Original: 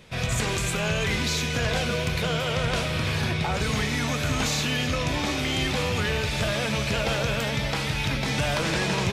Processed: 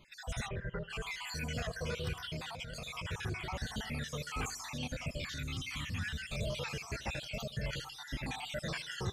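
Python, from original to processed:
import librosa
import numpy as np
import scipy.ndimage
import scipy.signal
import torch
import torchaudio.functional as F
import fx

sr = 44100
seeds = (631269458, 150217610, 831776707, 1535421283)

y = fx.spec_dropout(x, sr, seeds[0], share_pct=57)
y = fx.echo_feedback(y, sr, ms=80, feedback_pct=48, wet_db=-19.0)
y = 10.0 ** (-16.5 / 20.0) * np.tanh(y / 10.0 ** (-16.5 / 20.0))
y = fx.lowpass(y, sr, hz=2100.0, slope=24, at=(0.47, 0.89), fade=0.02)
y = fx.over_compress(y, sr, threshold_db=-33.0, ratio=-1.0, at=(2.5, 3.04), fade=0.02)
y = fx.band_shelf(y, sr, hz=580.0, db=-14.5, octaves=1.7, at=(5.23, 6.3))
y = fx.comb_cascade(y, sr, direction='falling', hz=0.86)
y = y * 10.0 ** (-5.0 / 20.0)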